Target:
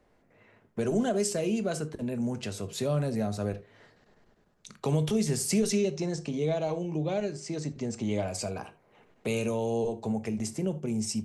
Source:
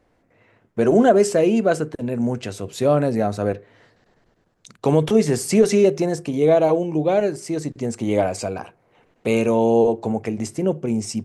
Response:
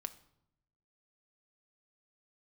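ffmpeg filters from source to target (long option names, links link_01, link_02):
-filter_complex "[0:a]asettb=1/sr,asplit=3[link_01][link_02][link_03];[link_01]atrim=end=5.724[link_04];[link_02]atrim=start=5.72:end=8.28,asetpts=PTS-STARTPTS,afade=type=in:duration=0.004:curve=qsin,afade=type=out:start_time=2.556:duration=0.004:curve=qsin,lowpass=frequency=7200:width=0.5412,lowpass=frequency=7200:width=1.3066[link_05];[link_03]atrim=start=8.276[link_06];[link_04][link_05]acrossfade=duration=0.004:curve1=hsin:curve2=qsin[link_07];[link_07][link_06]acrossfade=duration=0.004:curve1=qsin:curve2=hsin[link_08];[1:a]atrim=start_sample=2205,atrim=end_sample=3969[link_09];[link_08][link_09]afir=irnorm=-1:irlink=0,acrossover=split=150|3000[link_10][link_11][link_12];[link_11]acompressor=threshold=-37dB:ratio=2[link_13];[link_10][link_13][link_12]amix=inputs=3:normalize=0"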